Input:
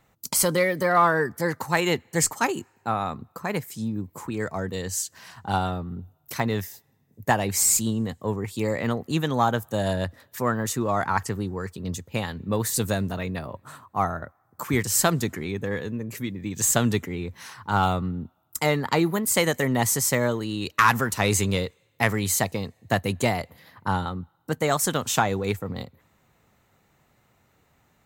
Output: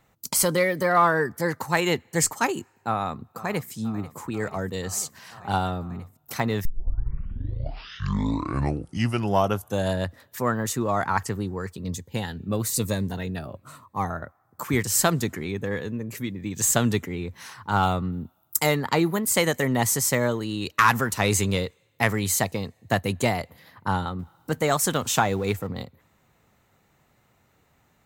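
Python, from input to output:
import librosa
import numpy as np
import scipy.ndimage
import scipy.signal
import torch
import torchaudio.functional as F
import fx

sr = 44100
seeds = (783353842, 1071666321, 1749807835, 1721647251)

y = fx.echo_throw(x, sr, start_s=2.75, length_s=0.96, ms=490, feedback_pct=85, wet_db=-17.5)
y = fx.notch_cascade(y, sr, direction='falling', hz=1.0, at=(11.78, 14.1))
y = fx.high_shelf(y, sr, hz=6800.0, db=11.5, at=(18.12, 18.75))
y = fx.law_mismatch(y, sr, coded='mu', at=(24.19, 25.67))
y = fx.edit(y, sr, fx.tape_start(start_s=6.65, length_s=3.28), tone=tone)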